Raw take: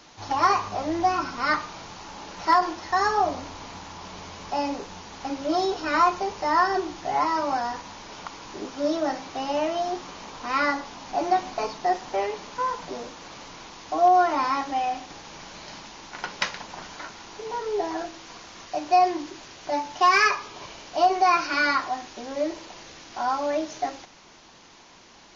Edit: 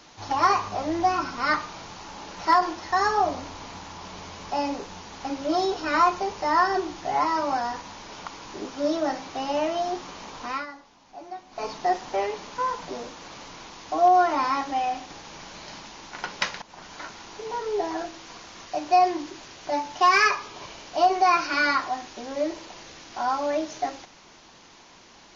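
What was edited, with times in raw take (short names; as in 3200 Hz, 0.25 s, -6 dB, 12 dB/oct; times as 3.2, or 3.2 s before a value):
10.43–11.72 dip -16 dB, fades 0.23 s
16.62–17.03 fade in linear, from -13.5 dB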